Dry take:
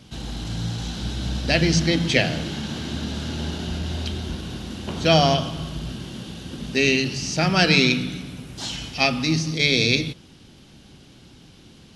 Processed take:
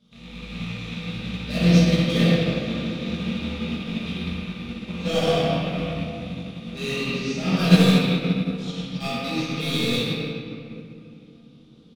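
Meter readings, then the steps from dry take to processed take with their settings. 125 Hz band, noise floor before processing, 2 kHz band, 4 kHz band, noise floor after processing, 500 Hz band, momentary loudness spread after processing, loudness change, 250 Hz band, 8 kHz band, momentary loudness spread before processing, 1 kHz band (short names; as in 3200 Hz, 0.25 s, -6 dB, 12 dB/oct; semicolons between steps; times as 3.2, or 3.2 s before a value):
+1.5 dB, -49 dBFS, -6.0 dB, -4.5 dB, -49 dBFS, -0.5 dB, 16 LU, -1.5 dB, +3.0 dB, -8.0 dB, 16 LU, -4.5 dB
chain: rattling part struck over -30 dBFS, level -16 dBFS; bell 3600 Hz +12.5 dB 0.29 oct; notch 1700 Hz, Q 17; hard clip -13 dBFS, distortion -10 dB; small resonant body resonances 200/480/1200 Hz, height 14 dB, ringing for 60 ms; on a send: early reflections 22 ms -5 dB, 63 ms -6.5 dB; on the sum: shoebox room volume 220 m³, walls hard, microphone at 1.3 m; upward expander 1.5:1, over -18 dBFS; gain -13 dB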